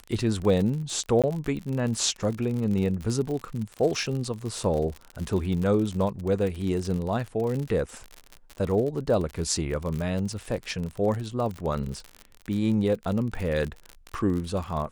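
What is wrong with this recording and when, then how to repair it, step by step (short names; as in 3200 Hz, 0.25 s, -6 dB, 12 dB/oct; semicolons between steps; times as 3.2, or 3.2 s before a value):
crackle 52/s -30 dBFS
1.22–1.24 gap 17 ms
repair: de-click; interpolate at 1.22, 17 ms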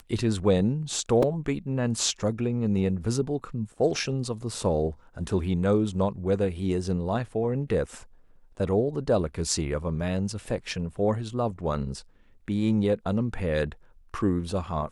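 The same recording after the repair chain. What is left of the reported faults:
none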